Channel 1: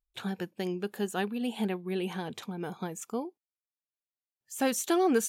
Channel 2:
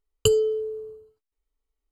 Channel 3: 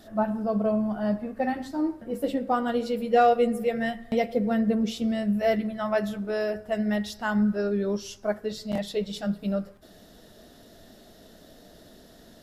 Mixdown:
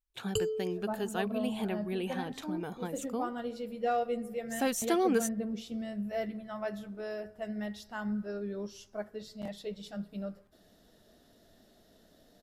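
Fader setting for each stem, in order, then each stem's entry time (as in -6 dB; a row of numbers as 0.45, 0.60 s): -2.5, -12.0, -11.0 dB; 0.00, 0.10, 0.70 s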